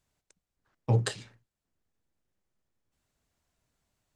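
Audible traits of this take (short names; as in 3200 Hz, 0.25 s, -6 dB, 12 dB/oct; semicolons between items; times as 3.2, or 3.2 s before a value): noise floor -88 dBFS; spectral tilt -5.5 dB/oct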